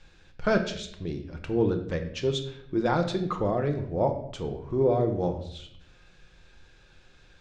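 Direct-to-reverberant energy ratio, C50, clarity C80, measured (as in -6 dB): 4.5 dB, 9.5 dB, 12.5 dB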